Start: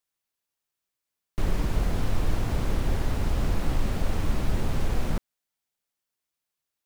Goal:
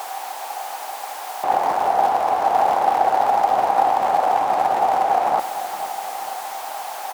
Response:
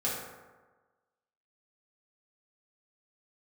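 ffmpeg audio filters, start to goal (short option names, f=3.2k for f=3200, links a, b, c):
-filter_complex "[0:a]aeval=exprs='val(0)+0.5*0.0282*sgn(val(0))':c=same,tiltshelf=f=1.5k:g=7,asplit=2[a][b];[b]aecho=0:1:450|900|1350|1800|2250|2700:0.224|0.123|0.0677|0.0372|0.0205|0.0113[c];[a][c]amix=inputs=2:normalize=0,asetrate=42336,aresample=44100,highpass=f=780:t=q:w=9.4,volume=6dB"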